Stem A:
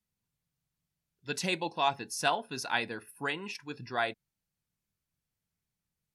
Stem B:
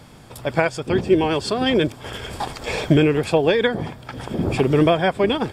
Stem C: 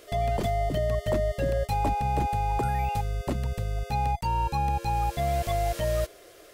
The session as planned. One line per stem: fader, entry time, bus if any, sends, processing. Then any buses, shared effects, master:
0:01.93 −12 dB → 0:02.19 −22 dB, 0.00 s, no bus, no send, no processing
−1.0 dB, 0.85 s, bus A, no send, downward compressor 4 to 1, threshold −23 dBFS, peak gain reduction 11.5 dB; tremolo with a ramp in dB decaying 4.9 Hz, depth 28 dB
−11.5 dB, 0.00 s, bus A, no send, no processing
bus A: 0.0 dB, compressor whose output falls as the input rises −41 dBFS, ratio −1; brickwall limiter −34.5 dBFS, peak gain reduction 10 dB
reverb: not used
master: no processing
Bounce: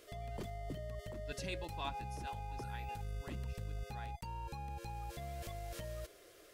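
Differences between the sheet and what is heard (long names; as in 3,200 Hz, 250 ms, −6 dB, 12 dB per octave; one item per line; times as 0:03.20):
stem B: muted
master: extra parametric band 730 Hz −4 dB 0.79 octaves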